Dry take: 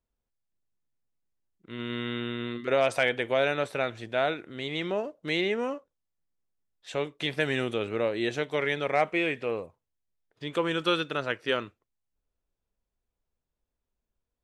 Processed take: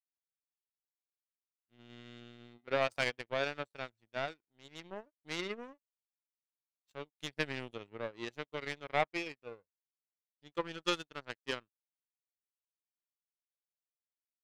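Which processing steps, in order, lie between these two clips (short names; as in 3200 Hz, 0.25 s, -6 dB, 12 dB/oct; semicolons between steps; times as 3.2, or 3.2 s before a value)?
per-bin expansion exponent 1.5; power-law curve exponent 2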